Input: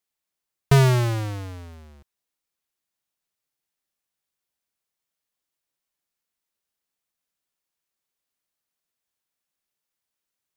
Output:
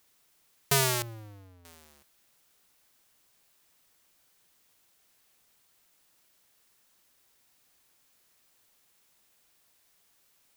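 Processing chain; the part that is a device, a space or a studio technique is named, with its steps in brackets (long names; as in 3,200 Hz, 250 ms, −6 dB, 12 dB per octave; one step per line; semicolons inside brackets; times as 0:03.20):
turntable without a phono preamp (RIAA equalisation recording; white noise bed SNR 28 dB)
0:01.02–0:01.65: drawn EQ curve 100 Hz 0 dB, 8,300 Hz −27 dB, 14,000 Hz −21 dB
level −5.5 dB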